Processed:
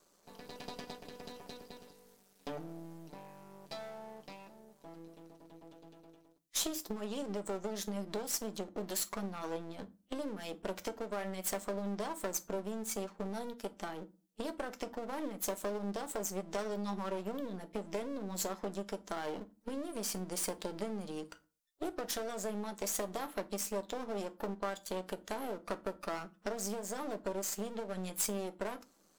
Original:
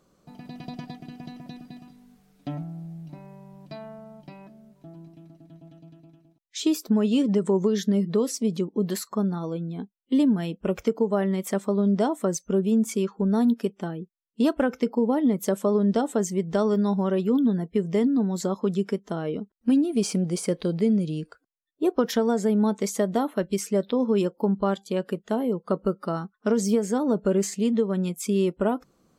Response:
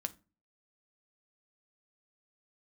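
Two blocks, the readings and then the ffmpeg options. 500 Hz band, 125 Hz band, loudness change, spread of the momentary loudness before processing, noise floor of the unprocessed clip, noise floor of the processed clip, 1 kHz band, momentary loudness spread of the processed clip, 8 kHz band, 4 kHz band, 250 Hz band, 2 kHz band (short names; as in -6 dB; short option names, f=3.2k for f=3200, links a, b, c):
-14.0 dB, -18.5 dB, -14.5 dB, 16 LU, -69 dBFS, -69 dBFS, -8.5 dB, 15 LU, -3.0 dB, -6.0 dB, -19.0 dB, -6.5 dB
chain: -filter_complex "[0:a]aeval=exprs='max(val(0),0)':c=same,acompressor=threshold=-31dB:ratio=6,bass=f=250:g=-12,treble=f=4k:g=8[a];[1:a]atrim=start_sample=2205[b];[a][b]afir=irnorm=-1:irlink=0,volume=1dB"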